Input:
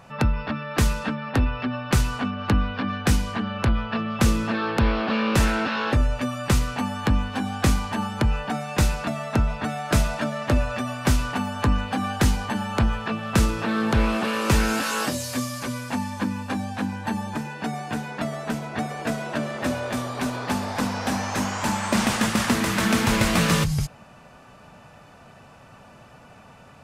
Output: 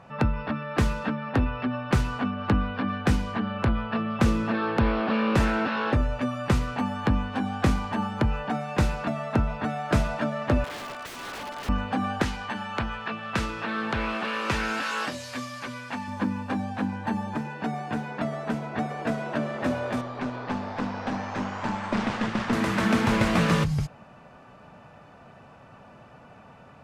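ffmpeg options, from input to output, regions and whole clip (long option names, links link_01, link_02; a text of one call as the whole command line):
ffmpeg -i in.wav -filter_complex "[0:a]asettb=1/sr,asplit=3[link_01][link_02][link_03];[link_01]atrim=end=10.644[link_04];[link_02]atrim=start=10.64:end=11.69,asetpts=PTS-STARTPTS,afade=type=in:duration=0.004:curve=qsin,afade=type=out:start_time=1.046:duration=0.004:curve=qsin,highpass=500,aeval=exprs='(mod(22.4*val(0)+1,2)-1)/22.4':channel_layout=same[link_05];[link_03]atrim=start=11.686[link_06];[link_04][link_05]acrossfade=duration=0.004:curve1=hsin:curve2=qsin[link_07];[link_07][link_06]acrossfade=duration=0.004:curve1=qsin:curve2=hsin,asettb=1/sr,asplit=3[link_08][link_09][link_10];[link_08]atrim=end=12.224[link_11];[link_09]atrim=start=12.22:end=16.08,asetpts=PTS-STARTPTS,afade=type=in:duration=0.004:curve=qsin,afade=type=out:start_time=3.856:duration=0.004:curve=qsin,lowpass=frequency=2700:poles=1,tiltshelf=frequency=1200:gain=-8.5[link_12];[link_10]atrim=start=16.076[link_13];[link_11][link_12]acrossfade=duration=0.004:curve1=hsin:curve2=qsin[link_14];[link_14][link_13]acrossfade=duration=0.004:curve1=qsin:curve2=hsin,asettb=1/sr,asplit=3[link_15][link_16][link_17];[link_15]atrim=end=20.014[link_18];[link_16]atrim=start=20.01:end=22.53,asetpts=PTS-STARTPTS,afade=type=in:duration=0.004:curve=qsin,afade=type=out:start_time=2.516:duration=0.004:curve=qsin,lowpass=5500,aeval=exprs='(tanh(5.01*val(0)+0.65)-tanh(0.65))/5.01':channel_layout=same[link_19];[link_17]atrim=start=22.526[link_20];[link_18][link_19]acrossfade=duration=0.004:curve1=hsin:curve2=qsin[link_21];[link_21][link_20]acrossfade=duration=0.004:curve1=qsin:curve2=hsin,lowpass=frequency=1900:poles=1,lowshelf=frequency=75:gain=-7" out.wav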